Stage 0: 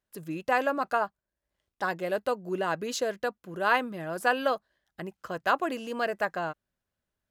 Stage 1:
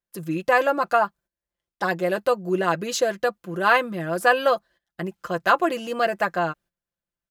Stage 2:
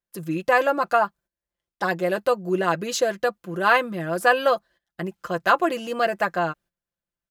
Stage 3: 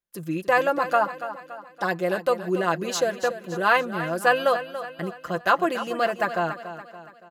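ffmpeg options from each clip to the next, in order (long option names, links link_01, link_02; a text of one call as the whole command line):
ffmpeg -i in.wav -af "aecho=1:1:5.8:0.58,agate=range=-13dB:threshold=-54dB:ratio=16:detection=peak,volume=5.5dB" out.wav
ffmpeg -i in.wav -af anull out.wav
ffmpeg -i in.wav -af "aecho=1:1:284|568|852|1136|1420:0.251|0.118|0.0555|0.0261|0.0123,volume=-1.5dB" out.wav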